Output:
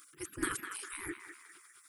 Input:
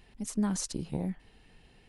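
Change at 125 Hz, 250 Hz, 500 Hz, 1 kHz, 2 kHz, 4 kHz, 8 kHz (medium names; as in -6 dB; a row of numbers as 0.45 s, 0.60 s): -18.0 dB, -11.5 dB, -5.0 dB, +1.0 dB, +11.5 dB, -4.0 dB, -3.0 dB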